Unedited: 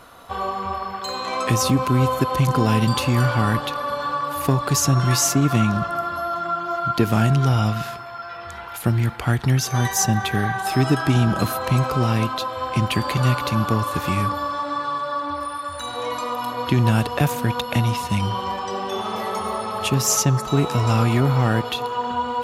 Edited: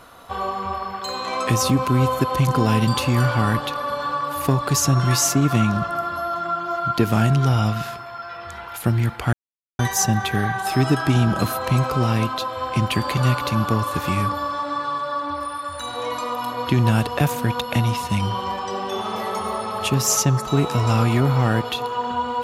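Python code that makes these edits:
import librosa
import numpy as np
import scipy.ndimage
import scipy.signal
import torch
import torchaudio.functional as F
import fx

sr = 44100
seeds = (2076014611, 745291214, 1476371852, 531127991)

y = fx.edit(x, sr, fx.silence(start_s=9.33, length_s=0.46), tone=tone)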